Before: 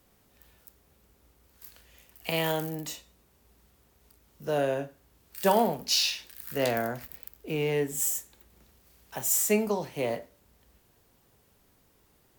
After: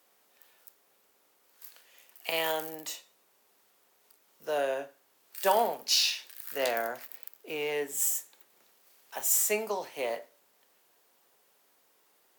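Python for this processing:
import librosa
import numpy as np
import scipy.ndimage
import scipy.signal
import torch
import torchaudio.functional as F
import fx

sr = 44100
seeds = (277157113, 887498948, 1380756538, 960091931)

y = scipy.signal.sosfilt(scipy.signal.butter(2, 510.0, 'highpass', fs=sr, output='sos'), x)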